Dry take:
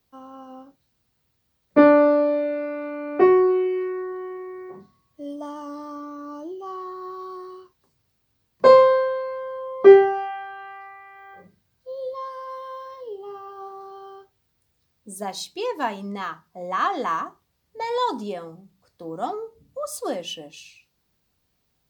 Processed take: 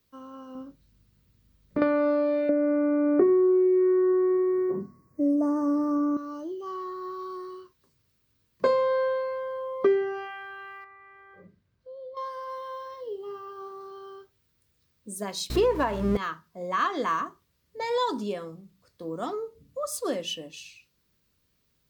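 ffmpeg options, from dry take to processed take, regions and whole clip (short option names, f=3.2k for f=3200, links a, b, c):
-filter_complex "[0:a]asettb=1/sr,asplit=3[a][b][c];[a]atrim=end=0.554[d];[b]atrim=start=0.55:end=1.82,asetpts=PTS-STARTPTS,afade=t=in:d=0.004:c=qsin,afade=t=out:st=1.266:d=0.004:c=qsin,lowshelf=f=310:g=10,acompressor=threshold=-27dB:ratio=3:attack=3.2:release=140:knee=1:detection=peak,aeval=exprs='val(0)+0.000562*(sin(2*PI*50*n/s)+sin(2*PI*2*50*n/s)/2+sin(2*PI*3*50*n/s)/3+sin(2*PI*4*50*n/s)/4+sin(2*PI*5*50*n/s)/5)':c=same[e];[c]atrim=start=1.816[f];[d][e]acrossfade=d=0.004:c1=hsin:c2=qsin[g];[g][f]acrossfade=d=0.004:c1=qsin:c2=hsin,asettb=1/sr,asplit=3[h][i][j];[h]atrim=end=2.494[k];[i]atrim=start=2.49:end=6.17,asetpts=PTS-STARTPTS,afade=t=in:d=0.004:c=qsin,afade=t=out:st=3.676:d=0.004:c=qsin,asuperstop=centerf=3300:order=4:qfactor=1,equalizer=f=270:w=0.4:g=13.5[l];[j]atrim=start=6.166[m];[k][l]acrossfade=d=0.004:c1=hsin:c2=qsin[n];[n][m]acrossfade=d=0.004:c1=qsin:c2=hsin,asettb=1/sr,asplit=3[o][p][q];[o]atrim=end=10.844[r];[p]atrim=start=10.84:end=12.17,asetpts=PTS-STARTPTS,afade=t=in:d=0.004:c=qsin,afade=t=out:st=1.326:d=0.004:c=qsin,lowpass=f=1.5k:p=1,acompressor=threshold=-45dB:ratio=2:attack=3.2:release=140:knee=1:detection=peak[s];[q]atrim=start=12.166[t];[r][s]acrossfade=d=0.004:c1=hsin:c2=qsin[u];[u][t]acrossfade=d=0.004:c1=qsin:c2=hsin,asettb=1/sr,asplit=3[v][w][x];[v]atrim=end=15.504[y];[w]atrim=start=15.5:end=16.17,asetpts=PTS-STARTPTS,afade=t=in:d=0.004:c=qsin,afade=t=out:st=0.666:d=0.004:c=qsin,aeval=exprs='val(0)+0.5*0.0168*sgn(val(0))':c=same,equalizer=f=620:w=0.39:g=14.5,aeval=exprs='val(0)+0.0355*(sin(2*PI*60*n/s)+sin(2*PI*2*60*n/s)/2+sin(2*PI*3*60*n/s)/3+sin(2*PI*4*60*n/s)/4+sin(2*PI*5*60*n/s)/5)':c=same[z];[x]atrim=start=16.166[aa];[y][z]acrossfade=d=0.004:c1=hsin:c2=qsin[ab];[ab][aa]acrossfade=d=0.004:c1=qsin:c2=hsin,acompressor=threshold=-19dB:ratio=8,equalizer=f=780:t=o:w=0.33:g=-12"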